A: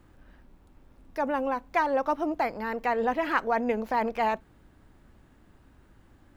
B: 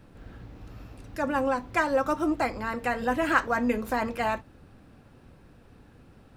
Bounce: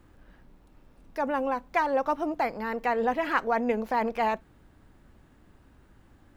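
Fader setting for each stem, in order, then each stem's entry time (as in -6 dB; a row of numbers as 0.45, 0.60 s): 0.0, -19.0 dB; 0.00, 0.00 s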